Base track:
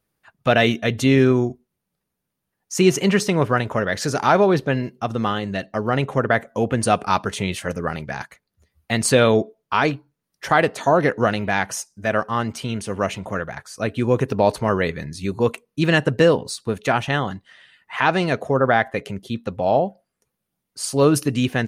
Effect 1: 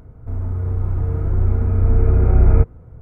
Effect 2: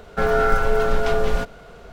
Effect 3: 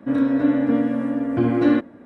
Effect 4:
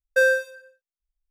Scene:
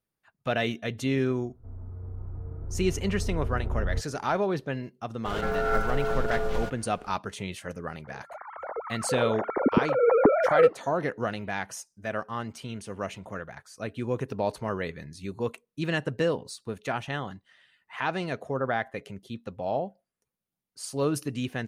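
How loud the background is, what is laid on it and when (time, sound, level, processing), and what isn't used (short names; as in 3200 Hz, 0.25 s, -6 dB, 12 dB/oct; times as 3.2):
base track -11 dB
1.37 add 1 -17 dB + LPF 1400 Hz
5.25 add 2 -9.5 dB + backwards sustainer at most 41 dB/s
8.04 add 1 -10 dB + sine-wave speech
not used: 3, 4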